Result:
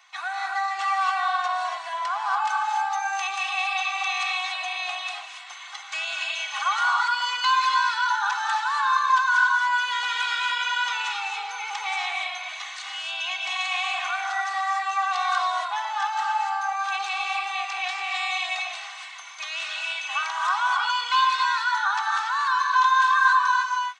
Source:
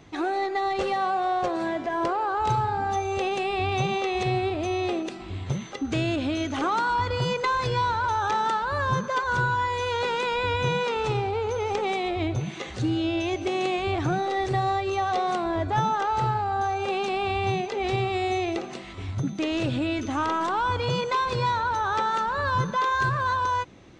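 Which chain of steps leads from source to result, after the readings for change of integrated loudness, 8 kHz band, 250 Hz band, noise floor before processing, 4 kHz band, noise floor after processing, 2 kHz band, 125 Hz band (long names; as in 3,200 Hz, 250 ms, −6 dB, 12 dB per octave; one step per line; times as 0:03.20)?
+2.0 dB, +5.5 dB, below −40 dB, −38 dBFS, +6.5 dB, −39 dBFS, +7.0 dB, below −40 dB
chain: Butterworth high-pass 920 Hz 36 dB per octave
comb filter 2.7 ms, depth 100%
reverb whose tail is shaped and stops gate 310 ms rising, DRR 0 dB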